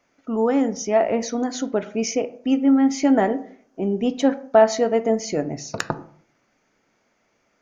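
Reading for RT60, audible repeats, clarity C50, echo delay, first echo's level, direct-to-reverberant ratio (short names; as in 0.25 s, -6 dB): 0.55 s, none, 16.0 dB, none, none, 10.0 dB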